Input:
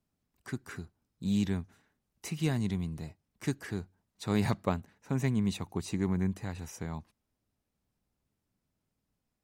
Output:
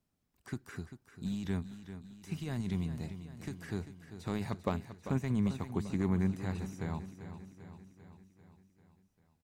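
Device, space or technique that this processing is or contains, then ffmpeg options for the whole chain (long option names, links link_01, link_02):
de-esser from a sidechain: -filter_complex "[0:a]asplit=2[link_01][link_02];[link_02]highpass=6800,apad=whole_len=416072[link_03];[link_01][link_03]sidechaincompress=threshold=-59dB:ratio=8:attack=3.5:release=31,aecho=1:1:394|788|1182|1576|1970|2364|2758:0.266|0.157|0.0926|0.0546|0.0322|0.019|0.0112"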